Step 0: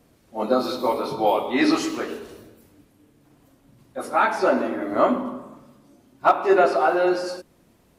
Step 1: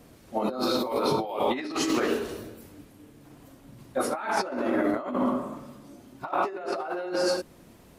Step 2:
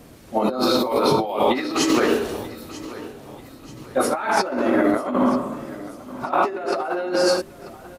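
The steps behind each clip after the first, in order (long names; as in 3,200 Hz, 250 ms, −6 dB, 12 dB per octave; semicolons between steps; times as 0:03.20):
compressor whose output falls as the input rises −29 dBFS, ratio −1
repeating echo 938 ms, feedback 41%, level −17 dB; level +7 dB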